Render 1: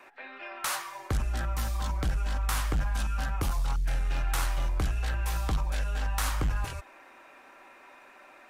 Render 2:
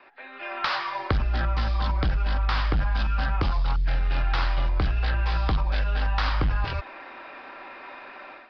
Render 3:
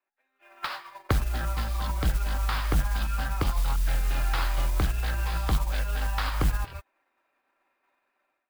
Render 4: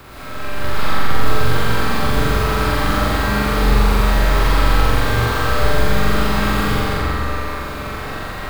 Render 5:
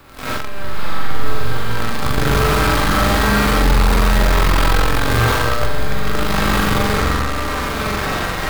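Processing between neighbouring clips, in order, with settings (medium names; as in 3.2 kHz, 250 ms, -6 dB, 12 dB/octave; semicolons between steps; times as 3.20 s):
compression 3:1, threshold -33 dBFS, peak gain reduction 6.5 dB; Chebyshev low-pass 5 kHz, order 6; level rider gain up to 11.5 dB
modulation noise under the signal 19 dB; upward expansion 2.5:1, over -43 dBFS; trim +1 dB
spectral levelling over time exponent 0.2; flutter echo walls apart 7.5 m, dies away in 1.3 s; reverberation RT60 2.4 s, pre-delay 70 ms, DRR -8 dB; trim -8 dB
flange 0.27 Hz, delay 3.4 ms, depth 5.1 ms, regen +70%; in parallel at -3 dB: fuzz box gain 31 dB, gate -33 dBFS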